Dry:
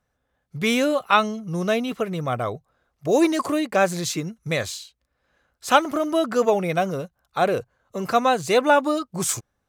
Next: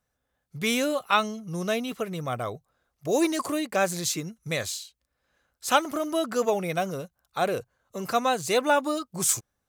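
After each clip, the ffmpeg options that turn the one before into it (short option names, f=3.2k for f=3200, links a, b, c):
-af "highshelf=f=4.7k:g=9,volume=-5.5dB"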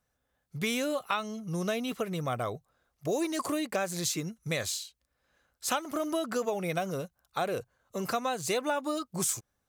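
-af "acompressor=threshold=-27dB:ratio=6"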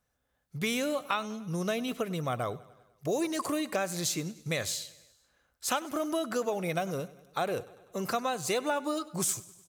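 -af "aecho=1:1:99|198|297|396|495:0.1|0.06|0.036|0.0216|0.013"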